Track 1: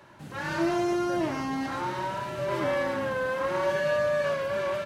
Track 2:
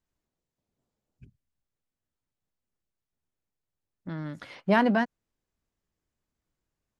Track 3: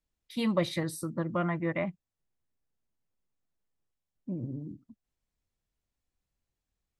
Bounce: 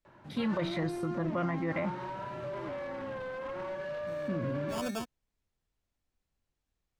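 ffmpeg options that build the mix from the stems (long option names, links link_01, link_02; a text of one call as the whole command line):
ffmpeg -i stem1.wav -i stem2.wav -i stem3.wav -filter_complex "[0:a]acompressor=threshold=-30dB:ratio=6,aeval=exprs='0.0376*(abs(mod(val(0)/0.0376+3,4)-2)-1)':channel_layout=same,highshelf=frequency=2600:gain=-10,adelay=50,volume=-3.5dB[link_01];[1:a]acrusher=samples=22:mix=1:aa=0.000001,adynamicequalizer=threshold=0.00794:dfrequency=4600:dqfactor=0.7:tfrequency=4600:tqfactor=0.7:attack=5:release=100:ratio=0.375:range=3.5:mode=boostabove:tftype=highshelf,volume=-12.5dB[link_02];[2:a]acrossover=split=3500[link_03][link_04];[link_04]acompressor=threshold=-51dB:ratio=4:attack=1:release=60[link_05];[link_03][link_05]amix=inputs=2:normalize=0,bandreject=frequency=60:width_type=h:width=6,bandreject=frequency=120:width_type=h:width=6,bandreject=frequency=180:width_type=h:width=6,volume=2dB,asplit=2[link_06][link_07];[link_07]apad=whole_len=308639[link_08];[link_02][link_08]sidechaincompress=threshold=-44dB:ratio=3:attack=5.2:release=146[link_09];[link_01][link_09][link_06]amix=inputs=3:normalize=0,highshelf=frequency=9700:gain=-11.5,alimiter=limit=-24dB:level=0:latency=1:release=29" out.wav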